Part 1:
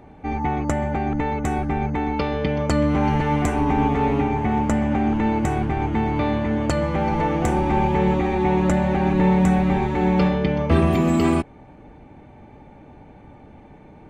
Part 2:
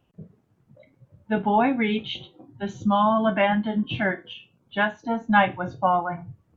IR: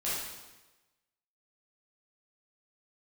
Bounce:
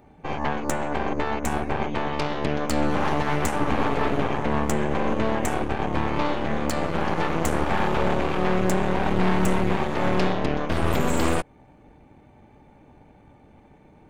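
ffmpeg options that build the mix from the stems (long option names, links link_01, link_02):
-filter_complex "[0:a]highshelf=frequency=6400:gain=10.5,aeval=exprs='0.631*(cos(1*acos(clip(val(0)/0.631,-1,1)))-cos(1*PI/2))+0.0794*(cos(3*acos(clip(val(0)/0.631,-1,1)))-cos(3*PI/2))+0.141*(cos(8*acos(clip(val(0)/0.631,-1,1)))-cos(8*PI/2))':channel_layout=same,volume=-3dB[link_01];[1:a]volume=-16dB[link_02];[link_01][link_02]amix=inputs=2:normalize=0,alimiter=limit=-11.5dB:level=0:latency=1:release=244"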